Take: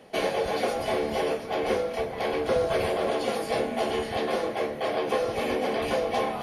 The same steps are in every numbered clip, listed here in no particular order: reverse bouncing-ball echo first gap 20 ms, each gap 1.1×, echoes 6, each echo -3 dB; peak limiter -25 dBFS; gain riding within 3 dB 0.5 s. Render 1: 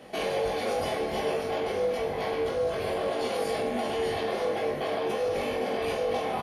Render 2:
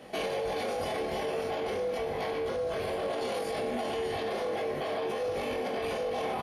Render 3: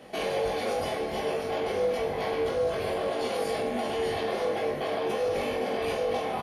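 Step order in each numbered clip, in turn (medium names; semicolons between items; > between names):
peak limiter > reverse bouncing-ball echo > gain riding; reverse bouncing-ball echo > peak limiter > gain riding; peak limiter > gain riding > reverse bouncing-ball echo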